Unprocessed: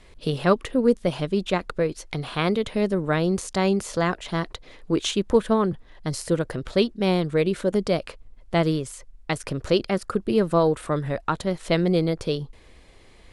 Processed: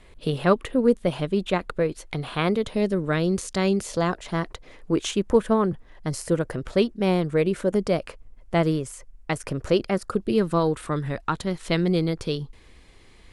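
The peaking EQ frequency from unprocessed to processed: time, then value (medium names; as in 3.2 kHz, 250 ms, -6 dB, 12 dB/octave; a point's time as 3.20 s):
peaking EQ -6 dB 0.72 oct
2.45 s 5.4 kHz
2.94 s 830 Hz
3.74 s 830 Hz
4.33 s 3.9 kHz
9.94 s 3.9 kHz
10.43 s 600 Hz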